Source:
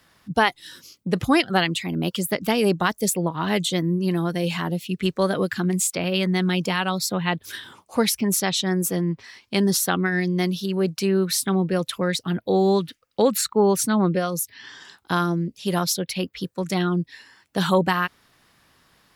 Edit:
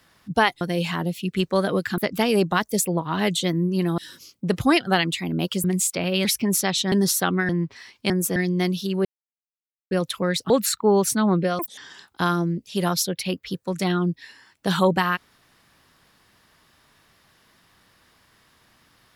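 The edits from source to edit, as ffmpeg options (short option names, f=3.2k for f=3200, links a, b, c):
-filter_complex "[0:a]asplit=15[a][b][c][d][e][f][g][h][i][j][k][l][m][n][o];[a]atrim=end=0.612[p];[b]atrim=start=4.268:end=5.642[q];[c]atrim=start=2.268:end=4.272[r];[d]atrim=start=0.608:end=2.272[s];[e]atrim=start=5.638:end=6.252[t];[f]atrim=start=8.038:end=8.712[u];[g]atrim=start=9.578:end=10.152[v];[h]atrim=start=8.968:end=9.582[w];[i]atrim=start=8.708:end=8.972[x];[j]atrim=start=10.148:end=10.84,asetpts=PTS-STARTPTS,afade=t=out:st=0.688:d=0.004:c=hsin[y];[k]atrim=start=10.84:end=11.7,asetpts=PTS-STARTPTS,volume=0[z];[l]atrim=start=11.7:end=12.292,asetpts=PTS-STARTPTS,afade=t=in:d=0.004:c=hsin[aa];[m]atrim=start=13.218:end=14.314[ab];[n]atrim=start=14.31:end=14.68,asetpts=PTS-STARTPTS,asetrate=87759,aresample=44100,atrim=end_sample=8199,asetpts=PTS-STARTPTS[ac];[o]atrim=start=14.676[ad];[p][q]acrossfade=d=0.004:c1=hsin:c2=hsin[ae];[ae][r]acrossfade=d=0.004:c1=hsin:c2=hsin[af];[af][s]acrossfade=d=0.004:c1=hsin:c2=hsin[ag];[ag][t]acrossfade=d=0.004:c1=hsin:c2=hsin[ah];[ah][u]acrossfade=d=0.004:c1=hsin:c2=hsin[ai];[ai][v]acrossfade=d=0.004:c1=hsin:c2=hsin[aj];[aj][w]acrossfade=d=0.004:c1=hsin:c2=hsin[ak];[ak][x]acrossfade=d=0.004:c1=hsin:c2=hsin[al];[y][z][aa]concat=n=3:v=0:a=1[am];[al][am]acrossfade=d=0.004:c1=hsin:c2=hsin[an];[an][ab]acrossfade=d=0.004:c1=hsin:c2=hsin[ao];[ao][ac]acrossfade=d=0.004:c1=hsin:c2=hsin[ap];[ap][ad]acrossfade=d=0.004:c1=hsin:c2=hsin"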